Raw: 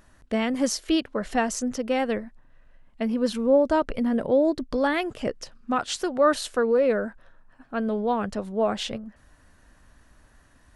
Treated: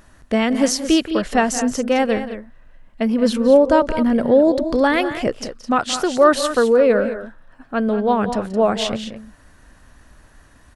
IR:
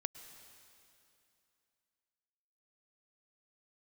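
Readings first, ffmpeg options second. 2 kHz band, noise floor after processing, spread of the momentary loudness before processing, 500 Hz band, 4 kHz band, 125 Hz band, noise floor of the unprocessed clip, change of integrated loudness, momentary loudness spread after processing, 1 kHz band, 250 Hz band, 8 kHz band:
+7.5 dB, −50 dBFS, 11 LU, +7.5 dB, +7.5 dB, +7.5 dB, −57 dBFS, +7.5 dB, 11 LU, +7.5 dB, +7.5 dB, +7.5 dB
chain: -af "aecho=1:1:175|212:0.178|0.266,volume=7dB"

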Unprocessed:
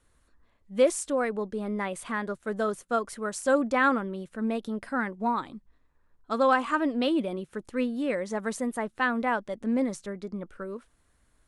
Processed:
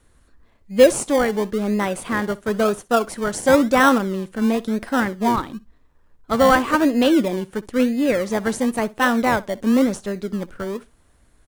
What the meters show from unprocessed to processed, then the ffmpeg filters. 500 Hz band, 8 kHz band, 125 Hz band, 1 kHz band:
+9.0 dB, +9.0 dB, can't be measured, +7.5 dB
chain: -filter_complex "[0:a]asplit=2[link_01][link_02];[link_02]acrusher=samples=27:mix=1:aa=0.000001:lfo=1:lforange=16.2:lforate=0.97,volume=-7dB[link_03];[link_01][link_03]amix=inputs=2:normalize=0,aecho=1:1:63|126:0.0891|0.0143,volume=7dB"

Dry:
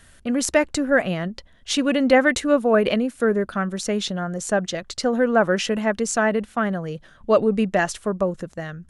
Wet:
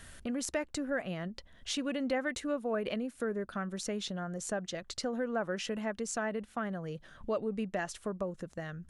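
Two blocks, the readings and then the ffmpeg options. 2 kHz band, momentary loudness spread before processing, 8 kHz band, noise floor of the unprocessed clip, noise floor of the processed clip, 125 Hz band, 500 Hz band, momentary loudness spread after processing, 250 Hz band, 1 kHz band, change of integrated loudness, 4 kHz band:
−15.5 dB, 10 LU, −11.5 dB, −52 dBFS, −59 dBFS, −12.5 dB, −15.0 dB, 6 LU, −14.0 dB, −15.0 dB, −14.5 dB, −12.0 dB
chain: -af "acompressor=threshold=-44dB:ratio=2"

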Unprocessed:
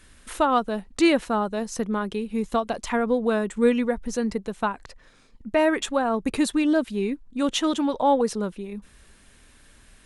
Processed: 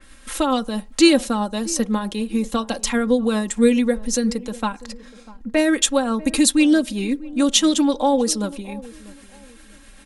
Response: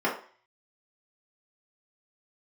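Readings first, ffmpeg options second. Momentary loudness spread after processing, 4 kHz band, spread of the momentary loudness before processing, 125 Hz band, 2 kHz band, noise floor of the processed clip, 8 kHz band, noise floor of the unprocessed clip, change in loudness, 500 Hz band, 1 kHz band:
12 LU, +9.5 dB, 9 LU, can't be measured, +3.0 dB, −46 dBFS, +13.5 dB, −55 dBFS, +4.5 dB, +2.0 dB, −0.5 dB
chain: -filter_complex "[0:a]equalizer=frequency=90:width=0.71:gain=-6.5,aecho=1:1:3.7:0.61,acrossover=split=430|3000[link_01][link_02][link_03];[link_02]acompressor=threshold=-41dB:ratio=1.5[link_04];[link_01][link_04][link_03]amix=inputs=3:normalize=0,tremolo=f=7.7:d=0.3,asplit=2[link_05][link_06];[link_06]adelay=645,lowpass=frequency=900:poles=1,volume=-18.5dB,asplit=2[link_07][link_08];[link_08]adelay=645,lowpass=frequency=900:poles=1,volume=0.32,asplit=2[link_09][link_10];[link_10]adelay=645,lowpass=frequency=900:poles=1,volume=0.32[link_11];[link_05][link_07][link_09][link_11]amix=inputs=4:normalize=0,asplit=2[link_12][link_13];[1:a]atrim=start_sample=2205,adelay=7[link_14];[link_13][link_14]afir=irnorm=-1:irlink=0,volume=-32.5dB[link_15];[link_12][link_15]amix=inputs=2:normalize=0,adynamicequalizer=threshold=0.00501:dfrequency=3100:dqfactor=0.7:tfrequency=3100:tqfactor=0.7:attack=5:release=100:ratio=0.375:range=4:mode=boostabove:tftype=highshelf,volume=6dB"

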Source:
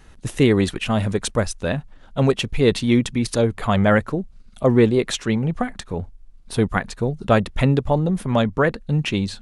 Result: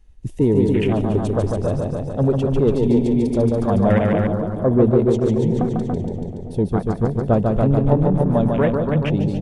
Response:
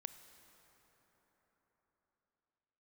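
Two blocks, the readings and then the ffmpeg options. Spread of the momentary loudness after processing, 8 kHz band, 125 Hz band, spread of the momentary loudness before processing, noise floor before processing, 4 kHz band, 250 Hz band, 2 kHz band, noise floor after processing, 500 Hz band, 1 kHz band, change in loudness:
7 LU, below −10 dB, +3.0 dB, 11 LU, −47 dBFS, below −10 dB, +2.5 dB, −8.0 dB, −32 dBFS, +2.5 dB, −0.5 dB, +2.0 dB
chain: -filter_complex "[0:a]equalizer=frequency=1400:width=1.7:gain=-9,asplit=2[link_01][link_02];[link_02]aecho=0:1:285|570|855|1140|1425|1710:0.562|0.253|0.114|0.0512|0.0231|0.0104[link_03];[link_01][link_03]amix=inputs=2:normalize=0,acontrast=53,asplit=2[link_04][link_05];[1:a]atrim=start_sample=2205,adelay=147[link_06];[link_05][link_06]afir=irnorm=-1:irlink=0,volume=1.5dB[link_07];[link_04][link_07]amix=inputs=2:normalize=0,afwtdn=0.0794,bandreject=frequency=4000:width=22,volume=-5.5dB"

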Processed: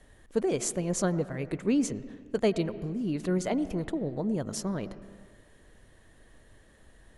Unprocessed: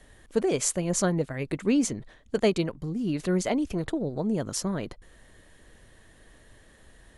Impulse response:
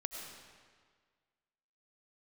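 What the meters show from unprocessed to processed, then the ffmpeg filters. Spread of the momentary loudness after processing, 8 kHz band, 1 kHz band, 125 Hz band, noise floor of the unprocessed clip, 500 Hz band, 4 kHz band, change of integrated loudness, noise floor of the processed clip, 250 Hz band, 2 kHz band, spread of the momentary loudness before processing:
7 LU, −5.0 dB, −3.0 dB, −2.0 dB, −56 dBFS, −2.5 dB, −5.5 dB, −2.5 dB, −58 dBFS, −2.0 dB, −4.5 dB, 7 LU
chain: -filter_complex "[0:a]asplit=2[link_01][link_02];[1:a]atrim=start_sample=2205,lowpass=3700,highshelf=frequency=2300:gain=-11[link_03];[link_02][link_03]afir=irnorm=-1:irlink=0,volume=-6dB[link_04];[link_01][link_04]amix=inputs=2:normalize=0,volume=-5dB"

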